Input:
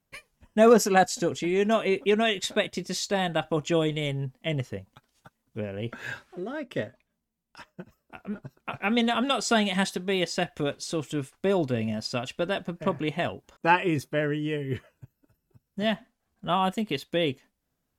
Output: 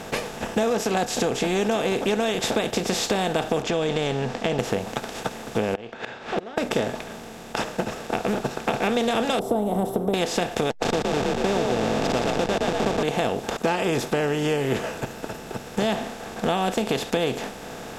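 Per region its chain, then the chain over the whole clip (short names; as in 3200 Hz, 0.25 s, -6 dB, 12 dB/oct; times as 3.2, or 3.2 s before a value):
3.62–4.59 LPF 5800 Hz 24 dB/oct + compressor 2.5:1, threshold -34 dBFS
5.74–6.58 LPF 3700 Hz 24 dB/oct + flipped gate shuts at -30 dBFS, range -41 dB + low shelf 240 Hz -11 dB
7.67–8.88 LPF 7600 Hz + companded quantiser 8-bit
9.39–10.14 inverse Chebyshev band-stop 1600–7000 Hz, stop band 50 dB + de-hum 130.7 Hz, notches 3
10.7–13.03 level-crossing sampler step -28 dBFS + air absorption 140 m + frequency-shifting echo 0.117 s, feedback 32%, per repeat +41 Hz, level -5 dB
whole clip: per-bin compression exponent 0.4; dynamic EQ 1600 Hz, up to -4 dB, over -31 dBFS, Q 0.94; compressor, threshold -21 dBFS; gain +1.5 dB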